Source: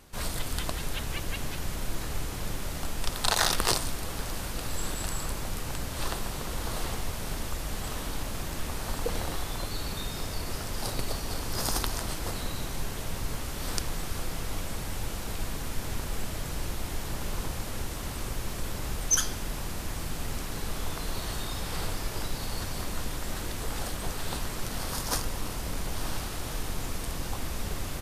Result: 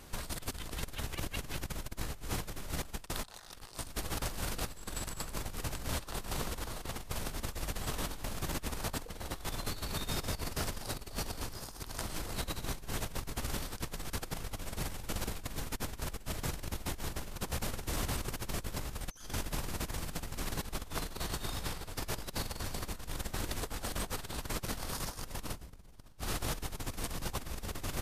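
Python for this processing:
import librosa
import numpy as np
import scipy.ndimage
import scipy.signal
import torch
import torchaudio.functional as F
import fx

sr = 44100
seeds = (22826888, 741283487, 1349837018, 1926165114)

y = fx.low_shelf(x, sr, hz=360.0, db=6.5, at=(25.52, 26.22))
y = fx.over_compress(y, sr, threshold_db=-35.0, ratio=-0.5)
y = y * 10.0 ** (-2.5 / 20.0)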